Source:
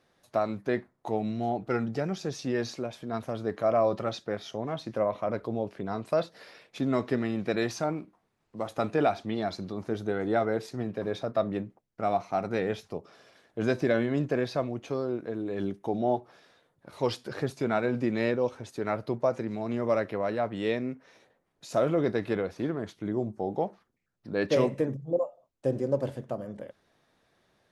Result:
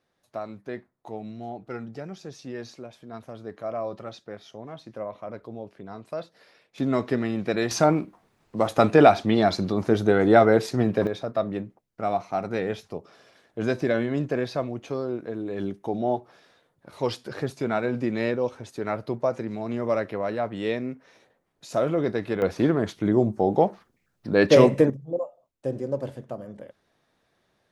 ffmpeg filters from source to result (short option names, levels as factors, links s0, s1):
-af "asetnsamples=n=441:p=0,asendcmd='6.78 volume volume 3dB;7.71 volume volume 10.5dB;11.07 volume volume 1.5dB;22.42 volume volume 9.5dB;24.9 volume volume -1dB',volume=0.473"